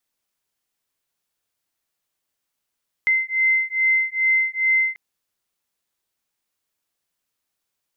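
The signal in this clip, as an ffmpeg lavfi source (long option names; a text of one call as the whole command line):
ffmpeg -f lavfi -i "aevalsrc='0.1*(sin(2*PI*2070*t)+sin(2*PI*2072.4*t))':duration=1.89:sample_rate=44100" out.wav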